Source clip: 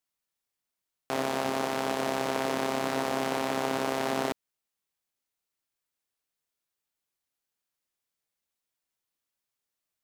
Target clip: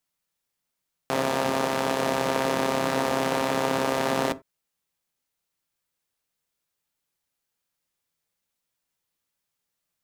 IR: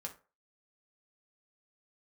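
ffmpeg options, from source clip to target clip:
-filter_complex "[0:a]asplit=2[s0][s1];[1:a]atrim=start_sample=2205,atrim=end_sample=4410,lowshelf=f=240:g=10.5[s2];[s1][s2]afir=irnorm=-1:irlink=0,volume=0.531[s3];[s0][s3]amix=inputs=2:normalize=0,volume=1.26"

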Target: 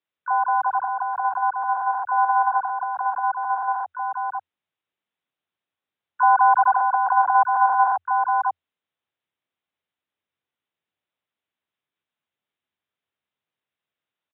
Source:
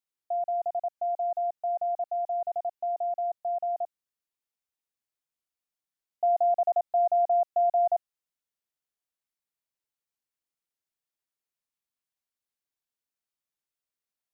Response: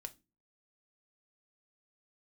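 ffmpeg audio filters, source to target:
-filter_complex "[0:a]aecho=1:1:543:0.531,asplit=3[s0][s1][s2];[s1]asetrate=58866,aresample=44100,atempo=0.749154,volume=0.891[s3];[s2]asetrate=88200,aresample=44100,atempo=0.5,volume=0.282[s4];[s0][s3][s4]amix=inputs=3:normalize=0,aresample=8000,aresample=44100,afreqshift=83,volume=1.88"

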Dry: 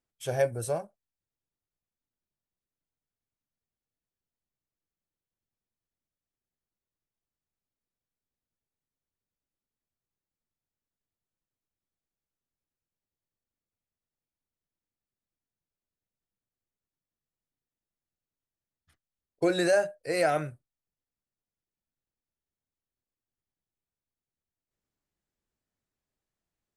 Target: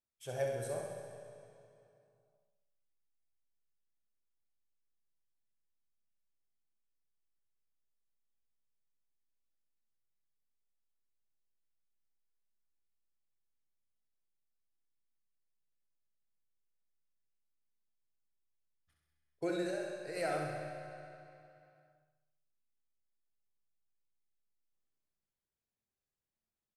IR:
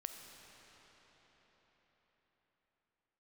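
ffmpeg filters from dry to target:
-filter_complex "[0:a]asplit=3[s0][s1][s2];[s0]afade=t=out:st=19.55:d=0.02[s3];[s1]acompressor=threshold=0.0282:ratio=3,afade=t=in:st=19.55:d=0.02,afade=t=out:st=20.15:d=0.02[s4];[s2]afade=t=in:st=20.15:d=0.02[s5];[s3][s4][s5]amix=inputs=3:normalize=0,aecho=1:1:66|132|198|264|330|396|462|528:0.562|0.337|0.202|0.121|0.0729|0.0437|0.0262|0.0157[s6];[1:a]atrim=start_sample=2205,asetrate=83790,aresample=44100[s7];[s6][s7]afir=irnorm=-1:irlink=0,volume=0.841"

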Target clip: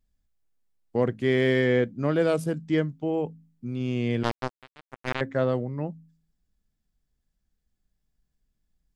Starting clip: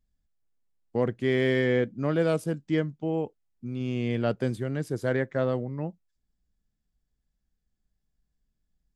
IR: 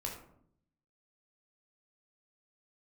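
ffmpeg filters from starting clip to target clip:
-filter_complex "[0:a]bandreject=f=54.02:t=h:w=4,bandreject=f=108.04:t=h:w=4,bandreject=f=162.06:t=h:w=4,bandreject=f=216.08:t=h:w=4,bandreject=f=270.1:t=h:w=4,asettb=1/sr,asplit=3[s0][s1][s2];[s0]atrim=end=4.234[s3];[s1]atrim=start=4.23:end=5.21,asetpts=PTS-STARTPTS,afade=t=in:d=0.004:c=qsin,afade=t=out:st=0.976:d=0.004:c=qsin,acrusher=bits=2:mix=0:aa=0.5[s4];[s2]atrim=start=5.206[s5];[s3][s4]acrossfade=d=0.004:c1=hsin:c2=qsin[s6];[s6][s5]acrossfade=d=0.004:c1=qsin:c2=hsin,volume=1.26"

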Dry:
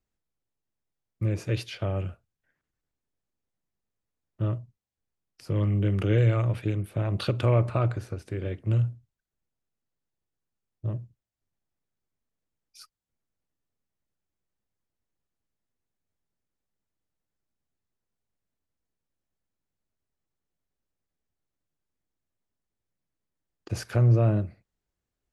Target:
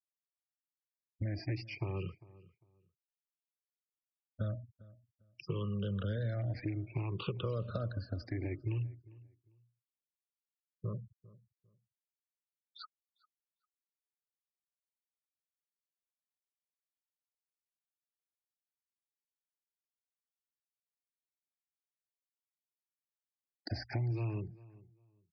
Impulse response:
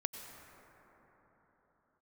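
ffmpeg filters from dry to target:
-filter_complex "[0:a]afftfilt=real='re*pow(10,18/40*sin(2*PI*(0.72*log(max(b,1)*sr/1024/100)/log(2)-(0.58)*(pts-256)/sr)))':imag='im*pow(10,18/40*sin(2*PI*(0.72*log(max(b,1)*sr/1024/100)/log(2)-(0.58)*(pts-256)/sr)))':win_size=1024:overlap=0.75,acrossover=split=380[s0][s1];[s1]acrusher=bits=4:mode=log:mix=0:aa=0.000001[s2];[s0][s2]amix=inputs=2:normalize=0,acrossover=split=450|1400|3900[s3][s4][s5][s6];[s3]acompressor=threshold=0.0562:ratio=4[s7];[s4]acompressor=threshold=0.01:ratio=4[s8];[s5]acompressor=threshold=0.00398:ratio=4[s9];[s6]acompressor=threshold=0.00447:ratio=4[s10];[s7][s8][s9][s10]amix=inputs=4:normalize=0,highshelf=f=4300:g=10.5,afftfilt=real='re*gte(hypot(re,im),0.01)':imag='im*gte(hypot(re,im),0.01)':win_size=1024:overlap=0.75,acompressor=threshold=0.01:ratio=2,aresample=11025,aresample=44100,asplit=2[s11][s12];[s12]adelay=400,lowpass=f=2000:p=1,volume=0.0944,asplit=2[s13][s14];[s14]adelay=400,lowpass=f=2000:p=1,volume=0.23[s15];[s13][s15]amix=inputs=2:normalize=0[s16];[s11][s16]amix=inputs=2:normalize=0"

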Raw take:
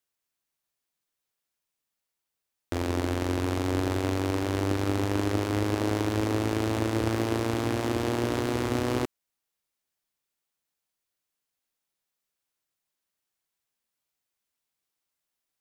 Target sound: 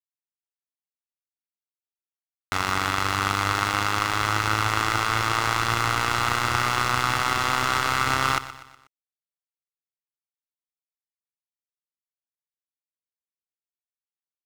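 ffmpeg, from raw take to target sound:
-filter_complex "[0:a]lowpass=7100,lowshelf=f=740:t=q:w=3:g=-10.5,aecho=1:1:1.6:0.48,aeval=exprs='val(0)*gte(abs(val(0)),0.0133)':c=same,asetrate=47628,aresample=44100,asplit=2[s0][s1];[s1]aecho=0:1:122|244|366|488:0.178|0.0854|0.041|0.0197[s2];[s0][s2]amix=inputs=2:normalize=0,volume=2.82"

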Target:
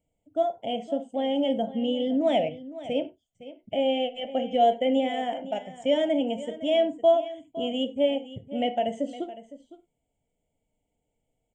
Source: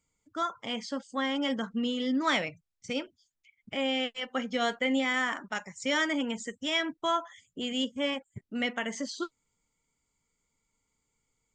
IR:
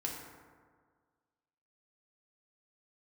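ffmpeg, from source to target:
-filter_complex "[0:a]firequalizer=gain_entry='entry(410,0);entry(690,13);entry(1100,-26);entry(3000,-1);entry(4400,-29);entry(8300,-5)':delay=0.05:min_phase=1,aecho=1:1:510:0.168,asplit=2[s0][s1];[1:a]atrim=start_sample=2205,atrim=end_sample=4410,lowpass=6300[s2];[s1][s2]afir=irnorm=-1:irlink=0,volume=0.473[s3];[s0][s3]amix=inputs=2:normalize=0"

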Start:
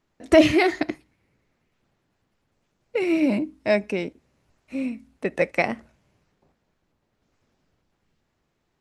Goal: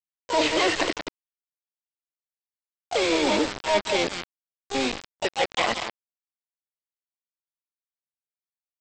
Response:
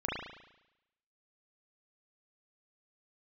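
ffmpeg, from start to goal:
-filter_complex "[0:a]highpass=440,areverse,acompressor=threshold=0.0316:ratio=10,areverse,aecho=1:1:180:0.376,aresample=11025,acrusher=bits=5:mix=0:aa=0.000001,aresample=44100,asplit=2[s0][s1];[s1]asetrate=66075,aresample=44100,atempo=0.66742,volume=0.794[s2];[s0][s2]amix=inputs=2:normalize=0,acontrast=59,volume=1.19"

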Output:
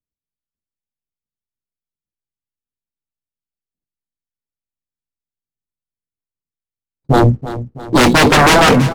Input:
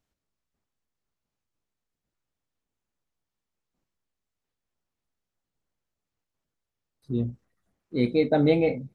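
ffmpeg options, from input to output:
-filter_complex "[0:a]acrossover=split=130|550[s0][s1][s2];[s2]aeval=exprs='max(val(0),0)':c=same[s3];[s0][s1][s3]amix=inputs=3:normalize=0,aemphasis=mode=production:type=75fm,agate=range=0.0141:threshold=0.00158:ratio=16:detection=peak,acontrast=57,aeval=exprs='0.473*sin(PI/2*6.31*val(0)/0.473)':c=same,adynamicsmooth=sensitivity=7:basefreq=660,asplit=2[s4][s5];[s5]aecho=0:1:328|656|984|1312|1640:0.2|0.104|0.054|0.0281|0.0146[s6];[s4][s6]amix=inputs=2:normalize=0,volume=1.12"

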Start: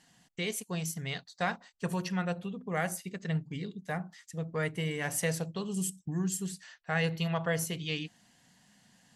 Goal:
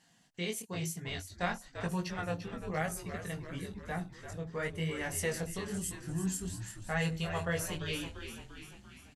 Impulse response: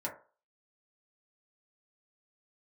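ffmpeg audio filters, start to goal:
-filter_complex "[0:a]flanger=delay=17:depth=6.1:speed=1,asplit=2[s0][s1];[s1]asplit=7[s2][s3][s4][s5][s6][s7][s8];[s2]adelay=344,afreqshift=-73,volume=0.335[s9];[s3]adelay=688,afreqshift=-146,volume=0.195[s10];[s4]adelay=1032,afreqshift=-219,volume=0.112[s11];[s5]adelay=1376,afreqshift=-292,volume=0.0653[s12];[s6]adelay=1720,afreqshift=-365,volume=0.038[s13];[s7]adelay=2064,afreqshift=-438,volume=0.0219[s14];[s8]adelay=2408,afreqshift=-511,volume=0.0127[s15];[s9][s10][s11][s12][s13][s14][s15]amix=inputs=7:normalize=0[s16];[s0][s16]amix=inputs=2:normalize=0"

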